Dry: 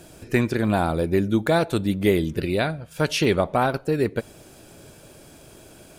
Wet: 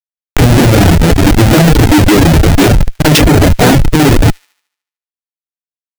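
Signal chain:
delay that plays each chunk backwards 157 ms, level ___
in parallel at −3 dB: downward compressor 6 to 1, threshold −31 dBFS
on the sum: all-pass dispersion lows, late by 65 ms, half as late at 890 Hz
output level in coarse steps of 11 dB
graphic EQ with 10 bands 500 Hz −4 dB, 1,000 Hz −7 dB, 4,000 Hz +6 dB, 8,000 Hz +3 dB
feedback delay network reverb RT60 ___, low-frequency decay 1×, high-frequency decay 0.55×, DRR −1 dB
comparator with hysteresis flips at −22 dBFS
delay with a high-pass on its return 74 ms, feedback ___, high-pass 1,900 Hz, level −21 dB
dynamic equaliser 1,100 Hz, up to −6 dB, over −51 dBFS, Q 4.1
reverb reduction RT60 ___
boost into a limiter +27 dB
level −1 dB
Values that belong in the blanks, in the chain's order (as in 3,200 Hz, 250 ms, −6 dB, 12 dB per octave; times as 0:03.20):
−10 dB, 0.33 s, 49%, 0.92 s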